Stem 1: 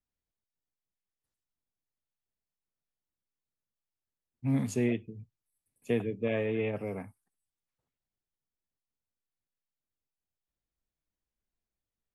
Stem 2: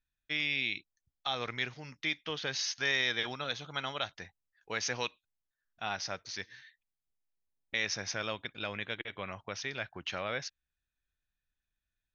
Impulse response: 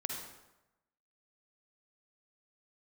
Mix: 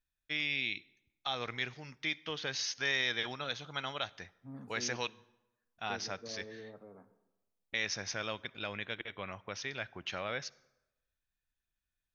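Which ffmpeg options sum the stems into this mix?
-filter_complex "[0:a]highpass=130,highshelf=f=1800:t=q:w=3:g=-10.5,volume=0.1,asplit=2[s0][s1];[s1]volume=0.316[s2];[1:a]volume=0.75,asplit=2[s3][s4];[s4]volume=0.0891[s5];[2:a]atrim=start_sample=2205[s6];[s2][s5]amix=inputs=2:normalize=0[s7];[s7][s6]afir=irnorm=-1:irlink=0[s8];[s0][s3][s8]amix=inputs=3:normalize=0"

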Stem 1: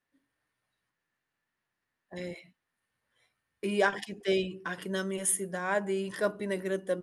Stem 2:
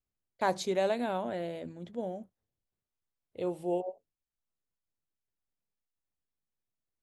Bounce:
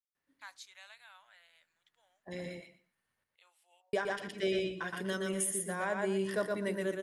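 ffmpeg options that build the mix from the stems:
-filter_complex "[0:a]adelay=150,volume=0.708,asplit=3[s0][s1][s2];[s0]atrim=end=3.24,asetpts=PTS-STARTPTS,afade=t=out:st=3.236:d=0.004:c=hsin[s3];[s1]atrim=start=3.24:end=3.93,asetpts=PTS-STARTPTS,volume=0[s4];[s2]atrim=start=3.93,asetpts=PTS-STARTPTS,afade=t=in:d=0.004:c=hsin[s5];[s3][s4][s5]concat=n=3:v=0:a=1,asplit=2[s6][s7];[s7]volume=0.668[s8];[1:a]highpass=f=1300:w=0.5412,highpass=f=1300:w=1.3066,volume=0.266[s9];[s8]aecho=0:1:119|238|357:1|0.17|0.0289[s10];[s6][s9][s10]amix=inputs=3:normalize=0,alimiter=limit=0.075:level=0:latency=1:release=206"

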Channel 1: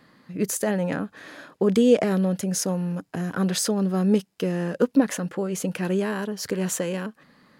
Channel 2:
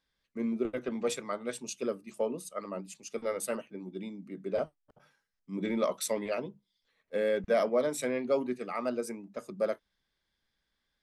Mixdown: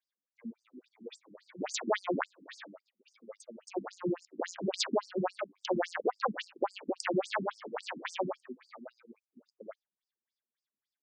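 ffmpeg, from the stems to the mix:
-filter_complex "[0:a]aeval=exprs='0.473*(cos(1*acos(clip(val(0)/0.473,-1,1)))-cos(1*PI/2))+0.211*(cos(6*acos(clip(val(0)/0.473,-1,1)))-cos(6*PI/2))':c=same,alimiter=limit=0.316:level=0:latency=1:release=92,adelay=1250,volume=1.33,asplit=3[s0][s1][s2];[s0]atrim=end=2.68,asetpts=PTS-STARTPTS,afade=t=out:st=2.676:d=0.004:c=hsin[s3];[s1]atrim=start=2.68:end=3.67,asetpts=PTS-STARTPTS,volume=0[s4];[s2]atrim=start=3.67,asetpts=PTS-STARTPTS,afade=t=in:d=0.004:c=hsin[s5];[s3][s4][s5]concat=n=3:v=0:a=1[s6];[1:a]bass=f=250:g=8,treble=f=4000:g=2,volume=0.398[s7];[s6][s7]amix=inputs=2:normalize=0,lowshelf=f=310:g=-7,afftfilt=real='re*between(b*sr/1024,240*pow(6600/240,0.5+0.5*sin(2*PI*3.6*pts/sr))/1.41,240*pow(6600/240,0.5+0.5*sin(2*PI*3.6*pts/sr))*1.41)':imag='im*between(b*sr/1024,240*pow(6600/240,0.5+0.5*sin(2*PI*3.6*pts/sr))/1.41,240*pow(6600/240,0.5+0.5*sin(2*PI*3.6*pts/sr))*1.41)':win_size=1024:overlap=0.75"

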